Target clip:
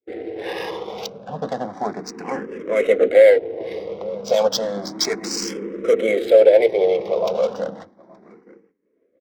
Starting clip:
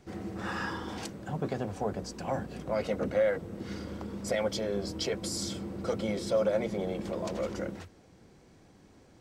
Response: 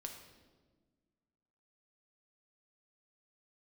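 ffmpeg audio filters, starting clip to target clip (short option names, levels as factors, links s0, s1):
-filter_complex "[0:a]asplit=2[s0][s1];[s1]acrusher=bits=4:mode=log:mix=0:aa=0.000001,volume=0.316[s2];[s0][s2]amix=inputs=2:normalize=0,highpass=270,equalizer=f=450:t=q:w=4:g=10,equalizer=f=920:t=q:w=4:g=-5,equalizer=f=1400:t=q:w=4:g=-5,equalizer=f=2100:t=q:w=4:g=8,equalizer=f=3900:t=q:w=4:g=9,equalizer=f=5600:t=q:w=4:g=9,lowpass=f=8500:w=0.5412,lowpass=f=8500:w=1.3066,bandreject=f=4200:w=9.5,adynamicsmooth=sensitivity=6:basefreq=1100,adynamicequalizer=threshold=0.0158:dfrequency=850:dqfactor=0.96:tfrequency=850:tqfactor=0.96:attack=5:release=100:ratio=0.375:range=3:mode=boostabove:tftype=bell,asplit=2[s3][s4];[s4]adelay=872,lowpass=f=1100:p=1,volume=0.126,asplit=2[s5][s6];[s6]adelay=872,lowpass=f=1100:p=1,volume=0.25[s7];[s5][s7]amix=inputs=2:normalize=0[s8];[s3][s8]amix=inputs=2:normalize=0,agate=range=0.0224:threshold=0.00794:ratio=3:detection=peak,asplit=2[s9][s10];[s10]afreqshift=0.32[s11];[s9][s11]amix=inputs=2:normalize=1,volume=2.51"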